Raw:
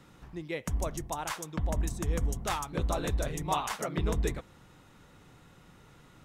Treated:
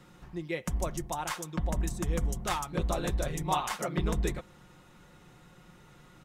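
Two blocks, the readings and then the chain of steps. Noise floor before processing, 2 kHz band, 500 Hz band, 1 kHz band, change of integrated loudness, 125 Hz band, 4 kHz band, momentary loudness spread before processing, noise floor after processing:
−58 dBFS, +0.5 dB, 0.0 dB, +1.0 dB, +0.5 dB, 0.0 dB, +0.5 dB, 5 LU, −57 dBFS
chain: comb filter 5.6 ms, depth 41%

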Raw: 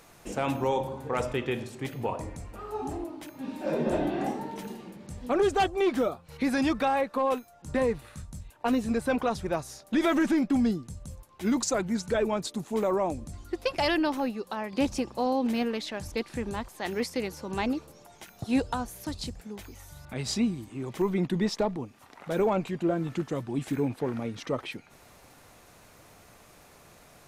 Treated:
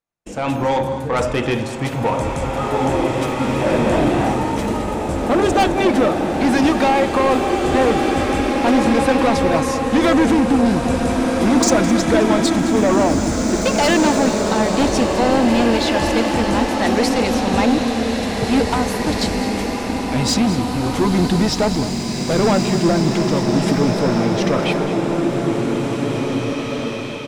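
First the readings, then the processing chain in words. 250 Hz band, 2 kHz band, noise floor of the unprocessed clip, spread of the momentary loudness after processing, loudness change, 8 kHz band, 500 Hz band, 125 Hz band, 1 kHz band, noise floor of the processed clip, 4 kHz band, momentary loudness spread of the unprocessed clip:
+13.0 dB, +13.5 dB, −55 dBFS, 7 LU, +12.0 dB, +14.5 dB, +12.0 dB, +15.0 dB, +13.5 dB, −24 dBFS, +14.5 dB, 14 LU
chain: low-pass filter 10,000 Hz 12 dB per octave
noise gate −44 dBFS, range −38 dB
notch filter 400 Hz, Q 12
automatic gain control gain up to 12 dB
soft clipping −15 dBFS, distortion −11 dB
on a send: single-tap delay 211 ms −14 dB
on the sum: slow-attack reverb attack 2,380 ms, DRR 0 dB
level +2.5 dB

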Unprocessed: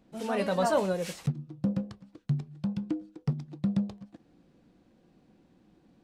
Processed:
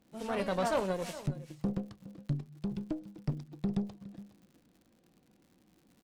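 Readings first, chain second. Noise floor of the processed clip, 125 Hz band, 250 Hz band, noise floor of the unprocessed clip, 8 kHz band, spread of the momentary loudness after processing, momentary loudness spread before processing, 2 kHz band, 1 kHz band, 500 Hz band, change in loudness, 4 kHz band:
−69 dBFS, −5.0 dB, −4.5 dB, −65 dBFS, can't be measured, 16 LU, 10 LU, −3.5 dB, −4.0 dB, −4.5 dB, −4.5 dB, −3.5 dB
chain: single-tap delay 414 ms −15.5 dB
harmonic generator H 6 −19 dB, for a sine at −14 dBFS
surface crackle 120 per second −48 dBFS
level −5 dB

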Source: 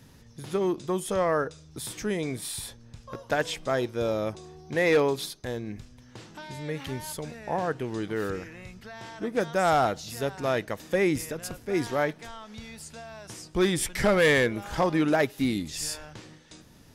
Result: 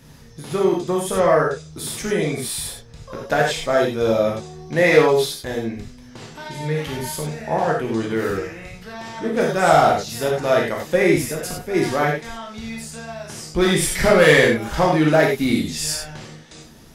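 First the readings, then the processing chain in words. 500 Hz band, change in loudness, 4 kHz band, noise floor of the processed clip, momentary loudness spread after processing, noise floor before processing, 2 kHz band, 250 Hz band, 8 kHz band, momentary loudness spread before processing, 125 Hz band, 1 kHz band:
+9.0 dB, +8.5 dB, +8.5 dB, −44 dBFS, 19 LU, −53 dBFS, +8.5 dB, +7.5 dB, +8.5 dB, 19 LU, +8.5 dB, +9.0 dB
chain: reverb whose tail is shaped and stops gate 120 ms flat, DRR −2 dB
level +4.5 dB

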